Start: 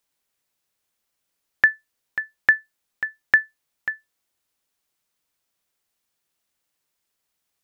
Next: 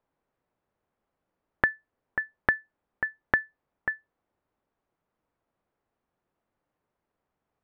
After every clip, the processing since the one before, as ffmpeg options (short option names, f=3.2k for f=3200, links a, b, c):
-af "lowpass=1k,acompressor=threshold=-27dB:ratio=6,volume=7.5dB"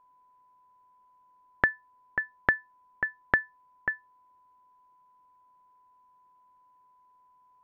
-af "aeval=exprs='val(0)+0.001*sin(2*PI*1000*n/s)':c=same"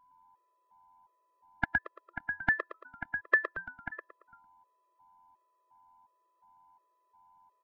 -filter_complex "[0:a]asplit=6[a][b][c][d][e][f];[b]adelay=113,afreqshift=-90,volume=-5dB[g];[c]adelay=226,afreqshift=-180,volume=-13.2dB[h];[d]adelay=339,afreqshift=-270,volume=-21.4dB[i];[e]adelay=452,afreqshift=-360,volume=-29.5dB[j];[f]adelay=565,afreqshift=-450,volume=-37.7dB[k];[a][g][h][i][j][k]amix=inputs=6:normalize=0,afftfilt=real='re*gt(sin(2*PI*1.4*pts/sr)*(1-2*mod(floor(b*sr/1024/340),2)),0)':imag='im*gt(sin(2*PI*1.4*pts/sr)*(1-2*mod(floor(b*sr/1024/340),2)),0)':win_size=1024:overlap=0.75"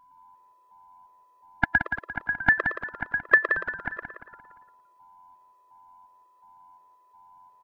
-af "aecho=1:1:174|348|522|696:0.398|0.155|0.0606|0.0236,volume=7.5dB"